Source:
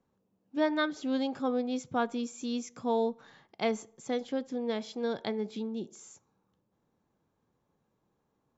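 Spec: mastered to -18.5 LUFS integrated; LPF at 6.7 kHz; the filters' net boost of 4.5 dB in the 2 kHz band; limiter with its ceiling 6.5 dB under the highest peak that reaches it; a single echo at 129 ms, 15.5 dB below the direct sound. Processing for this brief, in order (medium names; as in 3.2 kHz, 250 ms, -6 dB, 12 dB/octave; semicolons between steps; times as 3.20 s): low-pass 6.7 kHz; peaking EQ 2 kHz +6 dB; peak limiter -22.5 dBFS; delay 129 ms -15.5 dB; trim +16 dB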